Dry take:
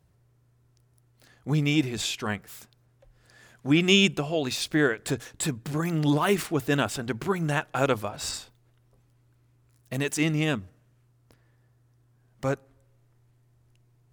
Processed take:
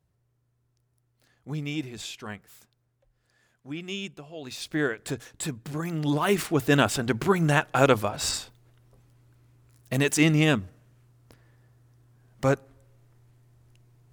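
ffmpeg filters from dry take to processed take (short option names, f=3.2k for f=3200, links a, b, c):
-af "volume=11.5dB,afade=t=out:st=2.51:d=1.25:silence=0.446684,afade=t=in:st=4.33:d=0.48:silence=0.266073,afade=t=in:st=6.04:d=0.8:silence=0.398107"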